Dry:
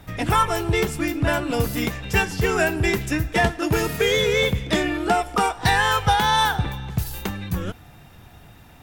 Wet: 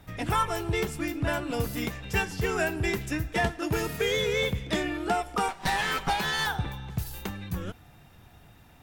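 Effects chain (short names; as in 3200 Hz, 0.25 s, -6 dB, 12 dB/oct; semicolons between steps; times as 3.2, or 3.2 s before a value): 5.48–6.47 minimum comb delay 5.2 ms; gain -7 dB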